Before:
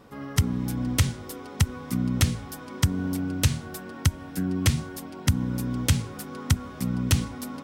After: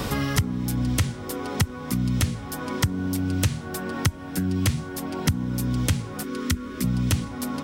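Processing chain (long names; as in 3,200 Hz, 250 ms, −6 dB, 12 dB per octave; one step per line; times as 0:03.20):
0:06.23–0:06.84: phaser with its sweep stopped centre 310 Hz, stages 4
multiband upward and downward compressor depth 100%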